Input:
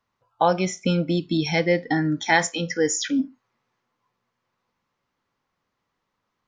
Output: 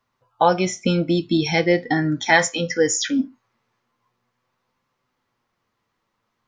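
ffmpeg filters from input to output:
ffmpeg -i in.wav -af "flanger=delay=7.7:depth=1.2:regen=61:speed=0.42:shape=sinusoidal,volume=7.5dB" out.wav

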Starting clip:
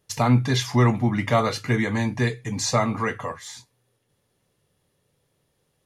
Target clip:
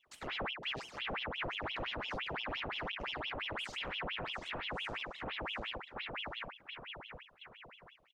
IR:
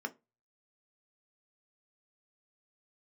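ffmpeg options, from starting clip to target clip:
-filter_complex "[0:a]equalizer=frequency=1500:width_type=o:width=2.1:gain=-11.5,atempo=0.72,highpass=62,asplit=2[link_01][link_02];[link_02]adelay=726,lowpass=frequency=1700:poles=1,volume=-4dB,asplit=2[link_03][link_04];[link_04]adelay=726,lowpass=frequency=1700:poles=1,volume=0.46,asplit=2[link_05][link_06];[link_06]adelay=726,lowpass=frequency=1700:poles=1,volume=0.46,asplit=2[link_07][link_08];[link_08]adelay=726,lowpass=frequency=1700:poles=1,volume=0.46,asplit=2[link_09][link_10];[link_10]adelay=726,lowpass=frequency=1700:poles=1,volume=0.46,asplit=2[link_11][link_12];[link_12]adelay=726,lowpass=frequency=1700:poles=1,volume=0.46[link_13];[link_03][link_05][link_07][link_09][link_11][link_13]amix=inputs=6:normalize=0[link_14];[link_01][link_14]amix=inputs=2:normalize=0,acompressor=threshold=-38dB:ratio=3,asplit=3[link_15][link_16][link_17];[link_15]bandpass=frequency=300:width_type=q:width=8,volume=0dB[link_18];[link_16]bandpass=frequency=870:width_type=q:width=8,volume=-6dB[link_19];[link_17]bandpass=frequency=2240:width_type=q:width=8,volume=-9dB[link_20];[link_18][link_19][link_20]amix=inputs=3:normalize=0,lowshelf=frequency=200:gain=4.5,aeval=exprs='0.0168*(cos(1*acos(clip(val(0)/0.0168,-1,1)))-cos(1*PI/2))+0.00188*(cos(6*acos(clip(val(0)/0.0168,-1,1)))-cos(6*PI/2))':channel_layout=same,alimiter=level_in=22dB:limit=-24dB:level=0:latency=1:release=17,volume=-22dB,aeval=exprs='val(0)*sin(2*PI*1700*n/s+1700*0.85/5.8*sin(2*PI*5.8*n/s))':channel_layout=same,volume=16dB"

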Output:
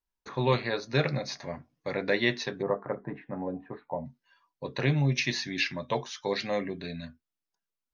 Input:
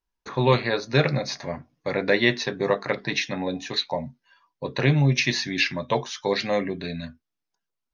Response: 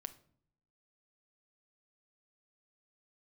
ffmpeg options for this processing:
-filter_complex "[0:a]asplit=3[link_01][link_02][link_03];[link_01]afade=type=out:start_time=2.61:duration=0.02[link_04];[link_02]lowpass=frequency=1300:width=0.5412,lowpass=frequency=1300:width=1.3066,afade=type=in:start_time=2.61:duration=0.02,afade=type=out:start_time=4.04:duration=0.02[link_05];[link_03]afade=type=in:start_time=4.04:duration=0.02[link_06];[link_04][link_05][link_06]amix=inputs=3:normalize=0,volume=-6dB"

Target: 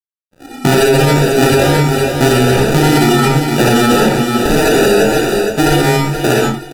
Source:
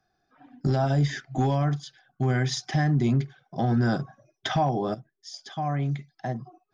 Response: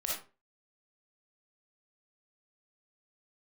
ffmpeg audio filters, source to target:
-filter_complex "[0:a]highpass=frequency=180:poles=1,equalizer=frequency=370:width_type=o:width=1.8:gain=7.5,asplit=2[link_01][link_02];[link_02]asoftclip=type=tanh:threshold=-28.5dB,volume=-3.5dB[link_03];[link_01][link_03]amix=inputs=2:normalize=0,aecho=1:1:469|938|1407:0.282|0.062|0.0136,adynamicsmooth=sensitivity=8:basefreq=1800,acrusher=samples=41:mix=1:aa=0.000001,aeval=exprs='sgn(val(0))*max(abs(val(0))-0.002,0)':channel_layout=same[link_04];[1:a]atrim=start_sample=2205,afade=type=out:start_time=0.19:duration=0.01,atrim=end_sample=8820,asetrate=30429,aresample=44100[link_05];[link_04][link_05]afir=irnorm=-1:irlink=0,alimiter=level_in=12.5dB:limit=-1dB:release=50:level=0:latency=1,volume=-1dB"

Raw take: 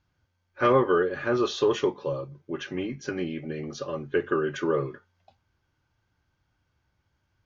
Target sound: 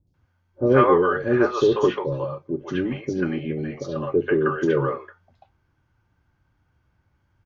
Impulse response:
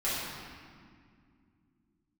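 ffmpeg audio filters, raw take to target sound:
-filter_complex "[0:a]highshelf=frequency=2400:gain=-10,acrossover=split=550|4100[link_01][link_02][link_03];[link_03]adelay=70[link_04];[link_02]adelay=140[link_05];[link_01][link_05][link_04]amix=inputs=3:normalize=0,volume=7.5dB"

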